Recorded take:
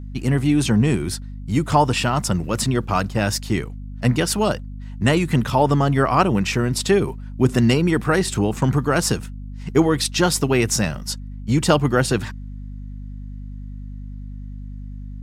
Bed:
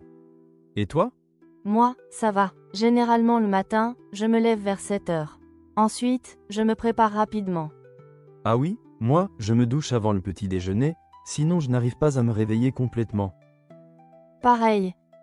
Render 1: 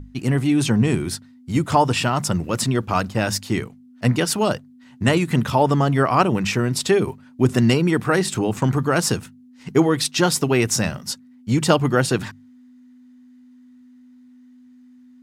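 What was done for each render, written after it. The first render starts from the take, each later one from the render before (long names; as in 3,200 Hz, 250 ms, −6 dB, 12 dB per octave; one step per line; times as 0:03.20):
mains-hum notches 50/100/150/200 Hz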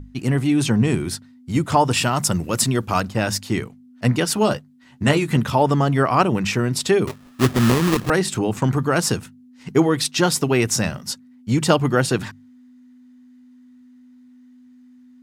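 0:01.91–0:03.00: high-shelf EQ 6,300 Hz +9 dB
0:04.35–0:05.37: double-tracking delay 14 ms −7 dB
0:07.07–0:08.10: sample-rate reduction 1,500 Hz, jitter 20%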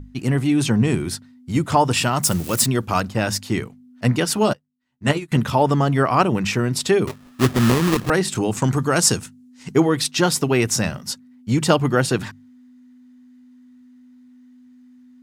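0:02.23–0:02.66: spike at every zero crossing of −20.5 dBFS
0:04.53–0:05.32: expander for the loud parts 2.5 to 1, over −30 dBFS
0:08.35–0:09.75: parametric band 7,600 Hz +8.5 dB 1.4 octaves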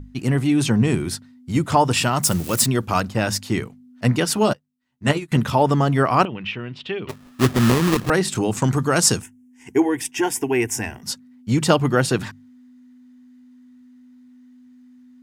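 0:06.25–0:07.09: transistor ladder low-pass 3,300 Hz, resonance 65%
0:09.22–0:11.03: phaser with its sweep stopped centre 840 Hz, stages 8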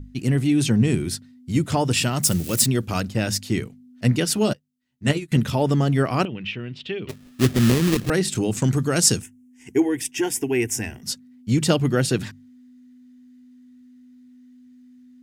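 parametric band 1,000 Hz −10.5 dB 1.3 octaves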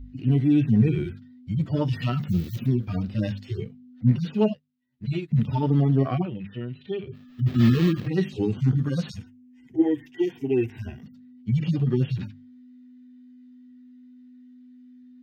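harmonic-percussive split with one part muted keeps harmonic
drawn EQ curve 3,900 Hz 0 dB, 9,900 Hz −23 dB, 15,000 Hz −7 dB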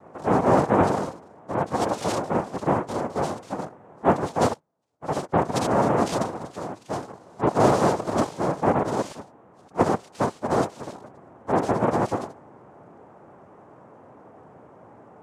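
cochlear-implant simulation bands 2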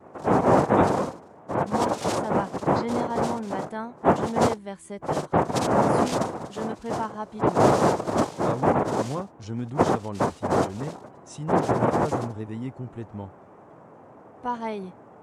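mix in bed −11 dB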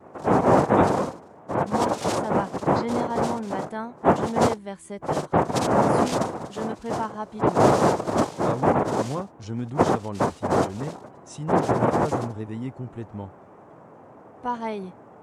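level +1 dB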